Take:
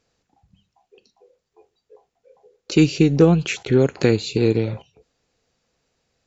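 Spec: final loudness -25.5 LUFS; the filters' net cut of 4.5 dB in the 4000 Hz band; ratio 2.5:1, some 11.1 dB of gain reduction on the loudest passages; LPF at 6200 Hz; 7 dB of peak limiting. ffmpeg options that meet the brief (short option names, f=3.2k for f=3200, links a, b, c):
-af "lowpass=6.2k,equalizer=f=4k:t=o:g=-5,acompressor=threshold=-27dB:ratio=2.5,volume=5dB,alimiter=limit=-13dB:level=0:latency=1"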